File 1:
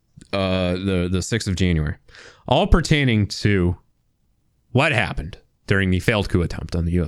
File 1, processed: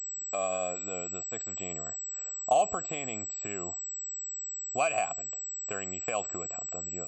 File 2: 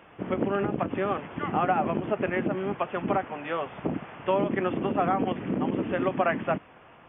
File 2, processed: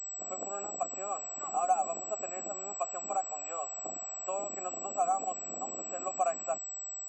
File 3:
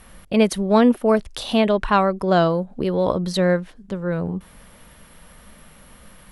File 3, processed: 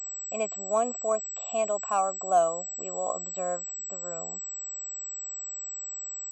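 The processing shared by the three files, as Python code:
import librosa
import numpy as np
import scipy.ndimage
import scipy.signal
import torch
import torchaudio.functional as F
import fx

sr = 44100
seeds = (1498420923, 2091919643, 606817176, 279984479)

y = fx.vowel_filter(x, sr, vowel='a')
y = fx.pwm(y, sr, carrier_hz=7800.0)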